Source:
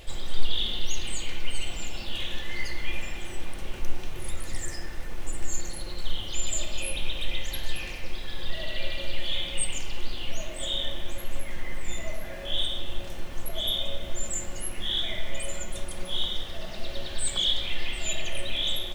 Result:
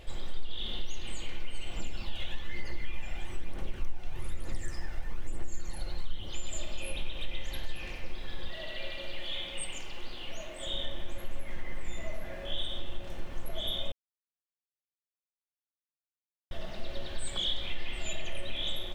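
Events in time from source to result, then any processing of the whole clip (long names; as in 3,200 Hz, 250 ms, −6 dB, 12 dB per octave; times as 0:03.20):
0:01.77–0:06.29: phase shifter 1.1 Hz, delay 1.5 ms, feedback 41%
0:08.48–0:10.67: low-shelf EQ 220 Hz −9 dB
0:13.92–0:16.51: silence
whole clip: high-shelf EQ 3,900 Hz −9 dB; downward compressor 3 to 1, threshold −22 dBFS; level −2.5 dB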